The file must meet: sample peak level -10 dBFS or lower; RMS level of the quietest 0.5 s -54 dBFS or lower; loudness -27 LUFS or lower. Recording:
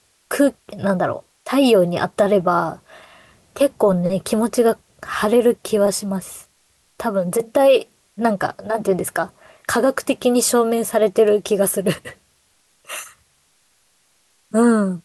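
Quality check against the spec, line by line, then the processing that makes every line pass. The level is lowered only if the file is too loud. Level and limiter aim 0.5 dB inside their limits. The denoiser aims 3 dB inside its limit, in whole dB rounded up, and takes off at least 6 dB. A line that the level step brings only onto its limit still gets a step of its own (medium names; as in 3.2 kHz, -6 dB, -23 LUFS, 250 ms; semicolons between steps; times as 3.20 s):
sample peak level -5.5 dBFS: fail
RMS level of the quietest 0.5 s -61 dBFS: pass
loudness -19.0 LUFS: fail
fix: trim -8.5 dB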